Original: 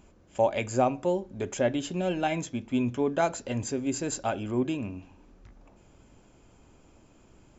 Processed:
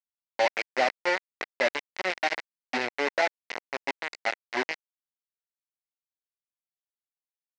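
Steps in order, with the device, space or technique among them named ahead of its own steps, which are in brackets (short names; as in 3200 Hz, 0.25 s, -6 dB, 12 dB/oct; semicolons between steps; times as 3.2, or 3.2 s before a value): 2.05–2.48 low shelf 100 Hz +4 dB; hand-held game console (bit-crush 4-bit; speaker cabinet 480–5000 Hz, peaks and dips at 1200 Hz -6 dB, 2000 Hz +9 dB, 3400 Hz -6 dB)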